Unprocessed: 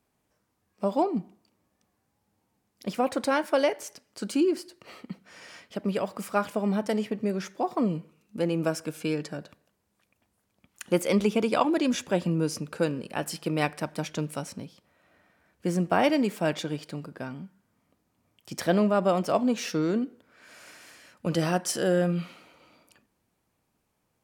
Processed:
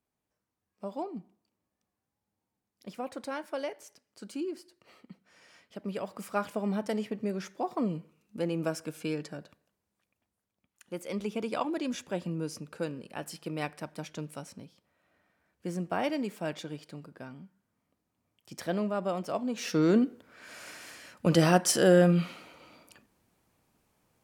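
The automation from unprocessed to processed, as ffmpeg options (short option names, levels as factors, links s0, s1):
-af "volume=5.96,afade=t=in:st=5.52:d=0.91:silence=0.446684,afade=t=out:st=9.14:d=1.7:silence=0.251189,afade=t=in:st=10.84:d=0.65:silence=0.375837,afade=t=in:st=19.52:d=0.41:silence=0.266073"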